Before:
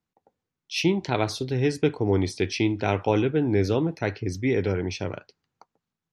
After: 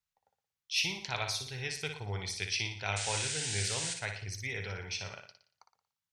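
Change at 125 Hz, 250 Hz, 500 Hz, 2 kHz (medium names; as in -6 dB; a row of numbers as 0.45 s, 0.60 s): -12.0 dB, -24.0 dB, -19.0 dB, -2.5 dB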